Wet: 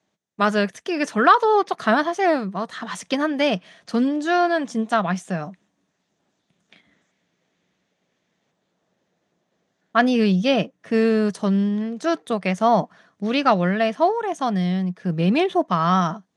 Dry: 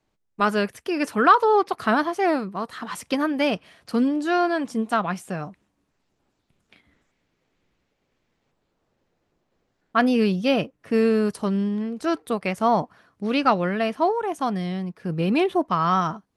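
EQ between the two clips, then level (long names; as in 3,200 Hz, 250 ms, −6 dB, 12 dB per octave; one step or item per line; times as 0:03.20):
loudspeaker in its box 140–9,500 Hz, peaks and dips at 180 Hz +8 dB, 650 Hz +5 dB, 1,800 Hz +5 dB, 3,500 Hz +6 dB, 6,300 Hz +8 dB
0.0 dB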